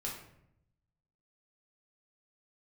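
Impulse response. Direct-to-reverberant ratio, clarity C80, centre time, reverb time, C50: -3.5 dB, 8.0 dB, 37 ms, 0.75 s, 4.5 dB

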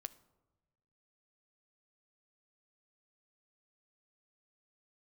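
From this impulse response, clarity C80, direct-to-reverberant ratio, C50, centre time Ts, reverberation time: 21.0 dB, 12.5 dB, 18.5 dB, 3 ms, 1.2 s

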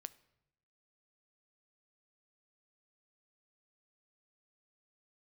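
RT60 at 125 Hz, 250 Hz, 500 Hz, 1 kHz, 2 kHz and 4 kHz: 1.1, 1.0, 0.90, 0.80, 0.75, 0.65 s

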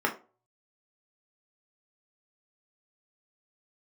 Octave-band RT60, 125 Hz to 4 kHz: 0.65, 0.35, 0.40, 0.35, 0.25, 0.20 s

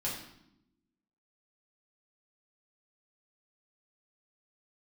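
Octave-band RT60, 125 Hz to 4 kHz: 1.1, 1.3, 0.90, 0.75, 0.70, 0.65 s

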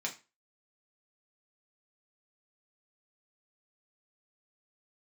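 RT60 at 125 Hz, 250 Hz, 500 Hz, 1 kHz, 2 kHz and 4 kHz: 0.25, 0.30, 0.30, 0.30, 0.30, 0.25 s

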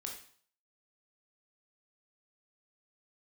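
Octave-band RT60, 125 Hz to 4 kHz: 0.55, 0.50, 0.50, 0.55, 0.50, 0.50 s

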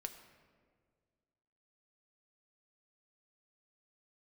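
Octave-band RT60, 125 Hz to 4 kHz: 2.2, 2.2, 2.1, 1.6, 1.4, 1.0 s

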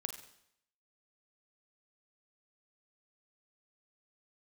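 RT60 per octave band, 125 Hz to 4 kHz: 0.70, 0.70, 0.75, 0.75, 0.70, 0.70 s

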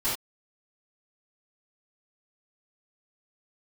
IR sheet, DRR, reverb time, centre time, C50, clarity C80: -16.0 dB, not exponential, 42 ms, 2.0 dB, 9.0 dB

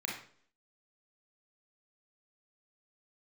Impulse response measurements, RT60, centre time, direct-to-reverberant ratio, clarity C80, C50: 0.55 s, 38 ms, -2.0 dB, 9.0 dB, 3.5 dB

